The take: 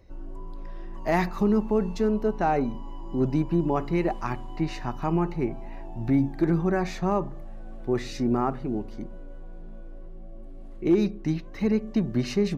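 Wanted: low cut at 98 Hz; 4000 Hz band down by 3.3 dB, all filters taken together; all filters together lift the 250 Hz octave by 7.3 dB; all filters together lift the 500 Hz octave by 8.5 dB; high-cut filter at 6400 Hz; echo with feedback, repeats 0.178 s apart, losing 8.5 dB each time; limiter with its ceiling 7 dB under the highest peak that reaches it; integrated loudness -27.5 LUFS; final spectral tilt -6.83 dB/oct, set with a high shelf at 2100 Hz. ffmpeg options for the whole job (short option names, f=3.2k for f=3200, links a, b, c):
-af "highpass=98,lowpass=6.4k,equalizer=f=250:t=o:g=7,equalizer=f=500:t=o:g=8.5,highshelf=f=2.1k:g=4,equalizer=f=4k:t=o:g=-7.5,alimiter=limit=-11dB:level=0:latency=1,aecho=1:1:178|356|534|712:0.376|0.143|0.0543|0.0206,volume=-6dB"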